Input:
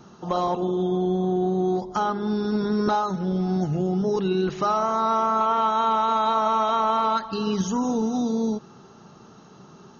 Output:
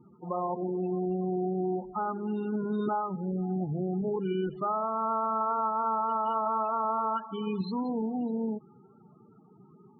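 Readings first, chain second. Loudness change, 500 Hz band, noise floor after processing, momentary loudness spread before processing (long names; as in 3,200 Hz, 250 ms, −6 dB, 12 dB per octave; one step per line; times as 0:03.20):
−7.0 dB, −7.0 dB, −58 dBFS, 4 LU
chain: hearing-aid frequency compression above 1,700 Hz 1.5 to 1
spectral peaks only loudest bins 16
level −7 dB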